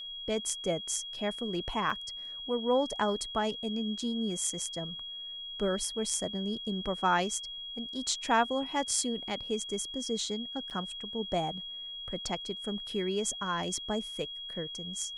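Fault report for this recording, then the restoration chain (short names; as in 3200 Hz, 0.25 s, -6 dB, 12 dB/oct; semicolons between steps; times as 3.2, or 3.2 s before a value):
tone 3300 Hz -39 dBFS
1.9 gap 3.5 ms
10.7–10.71 gap 7.4 ms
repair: notch 3300 Hz, Q 30; interpolate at 1.9, 3.5 ms; interpolate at 10.7, 7.4 ms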